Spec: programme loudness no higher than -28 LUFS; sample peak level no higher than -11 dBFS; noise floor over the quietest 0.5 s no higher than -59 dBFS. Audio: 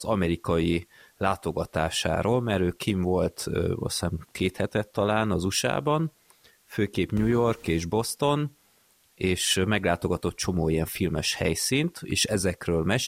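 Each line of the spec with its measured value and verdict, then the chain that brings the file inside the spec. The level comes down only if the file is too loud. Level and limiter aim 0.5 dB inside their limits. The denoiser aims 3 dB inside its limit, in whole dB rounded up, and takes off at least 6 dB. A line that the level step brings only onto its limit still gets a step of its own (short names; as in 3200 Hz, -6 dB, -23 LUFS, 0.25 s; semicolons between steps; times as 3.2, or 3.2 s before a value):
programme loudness -26.5 LUFS: fail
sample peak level -10.0 dBFS: fail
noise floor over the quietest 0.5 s -63 dBFS: OK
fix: gain -2 dB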